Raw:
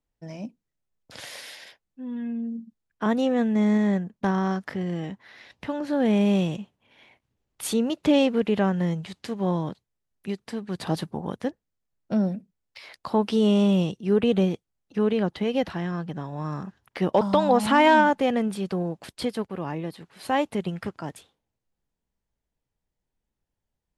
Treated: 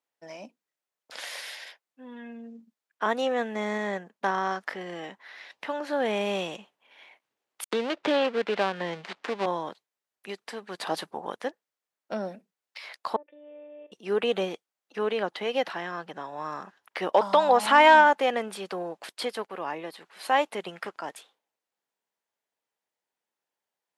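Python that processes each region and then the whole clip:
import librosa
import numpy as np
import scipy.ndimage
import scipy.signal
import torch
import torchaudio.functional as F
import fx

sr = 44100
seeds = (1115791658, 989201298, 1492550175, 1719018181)

y = fx.chain(x, sr, fx.dead_time(dead_ms=0.19),
    fx.lowpass(hz=3900.0, slope=12),
    fx.band_squash(depth_pct=70), at=(7.64, 9.46))
y = fx.chain(y, sr, fx.robotise(hz=295.0),
    fx.level_steps(step_db=15),
    fx.formant_cascade(vowel='e'), at=(13.16, 13.92))
y = scipy.signal.sosfilt(scipy.signal.butter(2, 490.0, 'highpass', fs=sr, output='sos'), y)
y = fx.peak_eq(y, sr, hz=1500.0, db=3.5, octaves=2.7)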